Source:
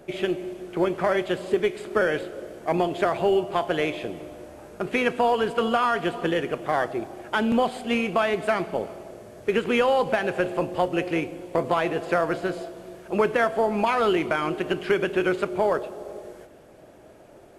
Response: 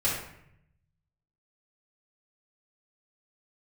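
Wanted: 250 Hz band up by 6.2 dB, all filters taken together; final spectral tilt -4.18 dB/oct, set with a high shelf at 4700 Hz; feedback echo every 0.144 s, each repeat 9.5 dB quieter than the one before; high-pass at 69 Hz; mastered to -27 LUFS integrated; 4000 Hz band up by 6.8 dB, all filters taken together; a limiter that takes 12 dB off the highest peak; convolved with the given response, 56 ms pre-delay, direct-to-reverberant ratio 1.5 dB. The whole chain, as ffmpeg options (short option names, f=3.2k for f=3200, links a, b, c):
-filter_complex "[0:a]highpass=69,equalizer=f=250:t=o:g=8.5,equalizer=f=4k:t=o:g=6.5,highshelf=f=4.7k:g=7.5,alimiter=limit=-17dB:level=0:latency=1,aecho=1:1:144|288|432|576:0.335|0.111|0.0365|0.012,asplit=2[a][b];[1:a]atrim=start_sample=2205,adelay=56[c];[b][c]afir=irnorm=-1:irlink=0,volume=-11.5dB[d];[a][d]amix=inputs=2:normalize=0,volume=-2.5dB"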